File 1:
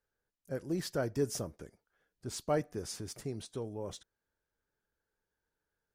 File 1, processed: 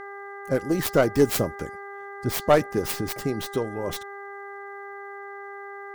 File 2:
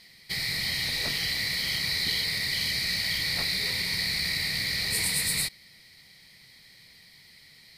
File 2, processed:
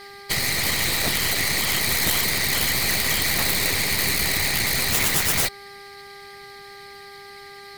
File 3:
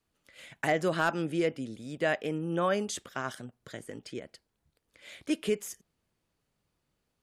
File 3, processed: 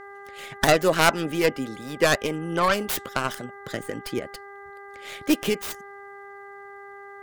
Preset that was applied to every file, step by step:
stylus tracing distortion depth 0.36 ms
harmonic and percussive parts rebalanced harmonic −9 dB
hum with harmonics 400 Hz, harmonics 5, −54 dBFS −2 dB per octave
SBC 192 kbit/s 48,000 Hz
normalise the peak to −6 dBFS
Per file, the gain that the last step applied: +15.0, +10.5, +11.5 decibels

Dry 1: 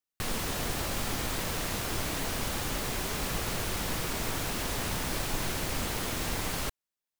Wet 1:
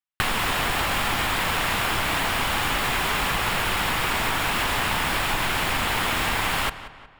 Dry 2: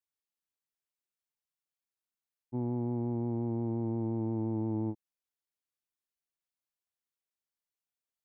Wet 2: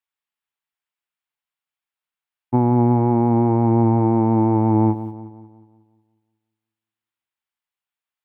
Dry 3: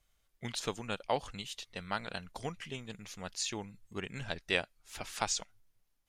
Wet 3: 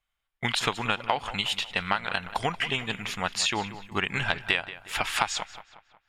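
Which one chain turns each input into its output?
noise gate −58 dBFS, range −21 dB
flat-topped bell 1,600 Hz +9.5 dB 2.5 octaves
notch filter 6,100 Hz, Q 11
downward compressor 8 to 1, threshold −32 dBFS
feedback echo with a low-pass in the loop 182 ms, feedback 47%, low-pass 4,000 Hz, level −14 dB
normalise the peak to −6 dBFS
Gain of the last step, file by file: +11.0, +19.5, +10.0 decibels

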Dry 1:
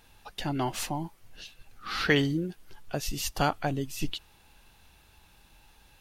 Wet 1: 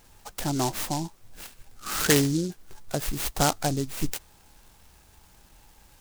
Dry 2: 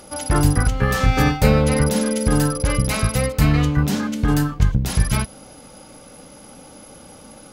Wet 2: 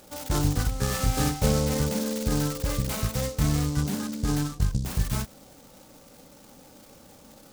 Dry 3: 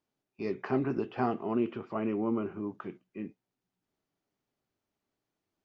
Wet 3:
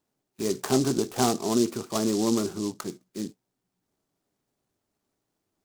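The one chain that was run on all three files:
short delay modulated by noise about 5,600 Hz, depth 0.1 ms
loudness normalisation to −27 LKFS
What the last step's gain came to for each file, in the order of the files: +3.5, −8.0, +6.0 decibels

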